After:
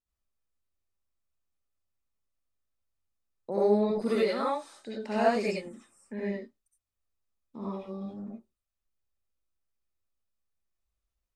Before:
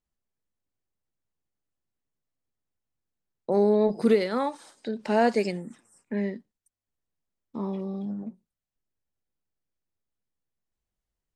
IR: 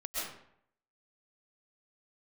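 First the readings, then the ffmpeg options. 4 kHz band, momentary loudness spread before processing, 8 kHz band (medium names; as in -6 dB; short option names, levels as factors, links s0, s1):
-1.5 dB, 19 LU, no reading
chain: -filter_complex "[1:a]atrim=start_sample=2205,afade=t=out:st=0.25:d=0.01,atrim=end_sample=11466,asetrate=83790,aresample=44100[s0];[0:a][s0]afir=irnorm=-1:irlink=0,volume=1.19"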